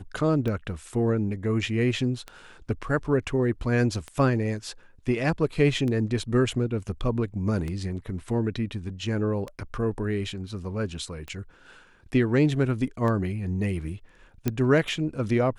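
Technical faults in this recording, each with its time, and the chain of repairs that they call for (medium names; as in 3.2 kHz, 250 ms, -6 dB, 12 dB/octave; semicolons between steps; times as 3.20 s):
tick 33 1/3 rpm -20 dBFS
14.48 s: pop -11 dBFS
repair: de-click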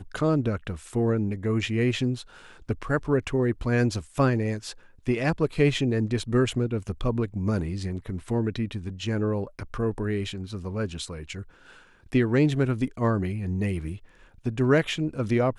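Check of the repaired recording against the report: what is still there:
nothing left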